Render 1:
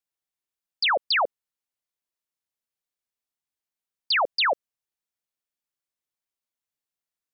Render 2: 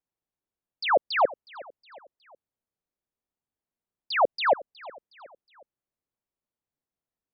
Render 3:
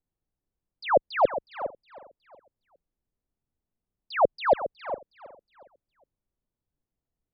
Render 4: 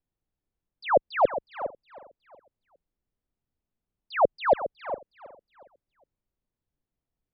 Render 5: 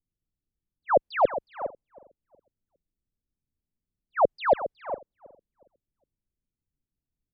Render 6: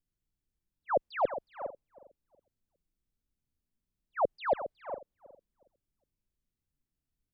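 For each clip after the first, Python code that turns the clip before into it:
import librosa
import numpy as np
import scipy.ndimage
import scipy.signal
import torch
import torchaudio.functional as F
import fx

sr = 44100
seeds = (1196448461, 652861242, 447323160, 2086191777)

y1 = fx.tilt_shelf(x, sr, db=10.0, hz=1400.0)
y1 = fx.echo_feedback(y1, sr, ms=365, feedback_pct=47, wet_db=-20.5)
y1 = y1 * 10.0 ** (-2.0 / 20.0)
y2 = fx.tilt_eq(y1, sr, slope=-4.0)
y2 = y2 + 10.0 ** (-11.5 / 20.0) * np.pad(y2, (int(410 * sr / 1000.0), 0))[:len(y2)]
y2 = y2 * 10.0 ** (-1.5 / 20.0)
y3 = scipy.signal.sosfilt(scipy.signal.butter(2, 3700.0, 'lowpass', fs=sr, output='sos'), y2)
y4 = fx.env_lowpass(y3, sr, base_hz=320.0, full_db=-23.0)
y5 = fx.hpss(y4, sr, part='percussive', gain_db=-11)
y5 = y5 * 10.0 ** (3.5 / 20.0)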